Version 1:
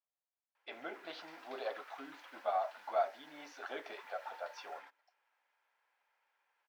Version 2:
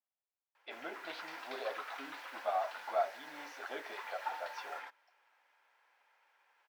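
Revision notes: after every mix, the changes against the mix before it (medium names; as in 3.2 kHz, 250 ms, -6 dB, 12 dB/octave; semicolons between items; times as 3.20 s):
background +8.5 dB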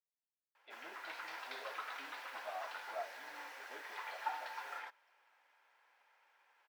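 speech -11.0 dB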